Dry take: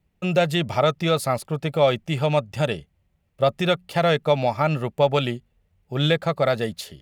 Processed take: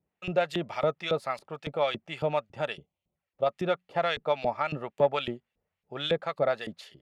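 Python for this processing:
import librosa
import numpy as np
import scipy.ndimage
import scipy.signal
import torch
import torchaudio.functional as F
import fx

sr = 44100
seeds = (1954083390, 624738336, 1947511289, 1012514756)

y = fx.filter_lfo_bandpass(x, sr, shape='saw_up', hz=3.6, low_hz=330.0, high_hz=3800.0, q=0.71)
y = fx.cheby_harmonics(y, sr, harmonics=(3,), levels_db=(-26,), full_scale_db=-8.0)
y = fx.env_flanger(y, sr, rest_ms=8.4, full_db=-48.0, at=(2.76, 3.45), fade=0.02)
y = y * librosa.db_to_amplitude(-3.0)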